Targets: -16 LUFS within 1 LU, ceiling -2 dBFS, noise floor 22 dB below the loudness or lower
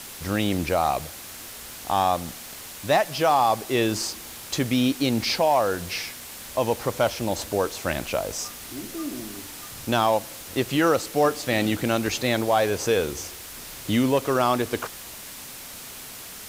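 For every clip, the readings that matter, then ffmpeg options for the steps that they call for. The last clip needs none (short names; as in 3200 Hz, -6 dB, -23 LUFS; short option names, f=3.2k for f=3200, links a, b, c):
noise floor -40 dBFS; noise floor target -47 dBFS; loudness -24.5 LUFS; peak -9.0 dBFS; loudness target -16.0 LUFS
-> -af "afftdn=nr=7:nf=-40"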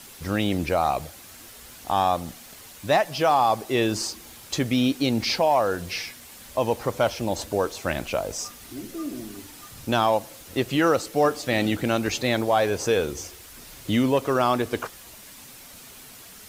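noise floor -45 dBFS; noise floor target -47 dBFS
-> -af "afftdn=nr=6:nf=-45"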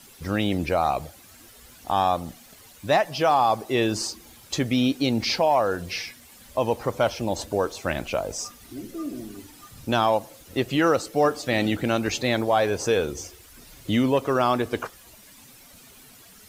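noise floor -50 dBFS; loudness -24.5 LUFS; peak -9.0 dBFS; loudness target -16.0 LUFS
-> -af "volume=8.5dB,alimiter=limit=-2dB:level=0:latency=1"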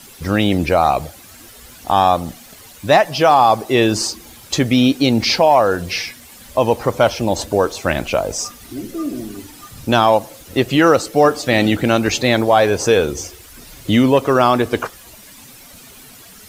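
loudness -16.0 LUFS; peak -2.0 dBFS; noise floor -42 dBFS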